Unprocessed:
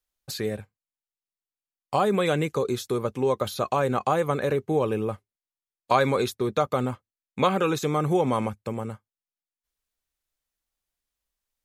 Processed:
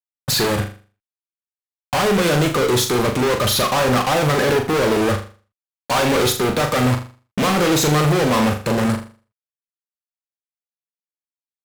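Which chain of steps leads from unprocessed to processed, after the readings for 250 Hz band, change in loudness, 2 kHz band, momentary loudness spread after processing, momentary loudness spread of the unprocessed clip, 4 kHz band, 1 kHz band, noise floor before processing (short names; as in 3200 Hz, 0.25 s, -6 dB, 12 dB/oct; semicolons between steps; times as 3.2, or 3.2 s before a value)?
+8.5 dB, +7.5 dB, +12.0 dB, 6 LU, 11 LU, +15.0 dB, +6.0 dB, under -85 dBFS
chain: fuzz box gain 43 dB, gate -46 dBFS; flutter echo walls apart 6.9 m, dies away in 0.38 s; gain -3.5 dB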